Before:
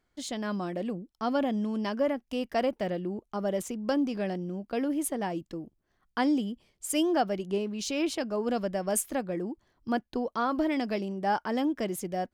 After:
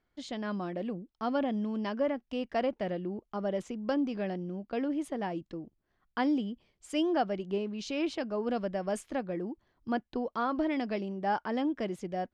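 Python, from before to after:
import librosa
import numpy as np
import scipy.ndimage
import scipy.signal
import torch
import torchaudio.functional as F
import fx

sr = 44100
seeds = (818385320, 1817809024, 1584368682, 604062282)

y = scipy.signal.sosfilt(scipy.signal.butter(2, 4200.0, 'lowpass', fs=sr, output='sos'), x)
y = y * 10.0 ** (-2.5 / 20.0)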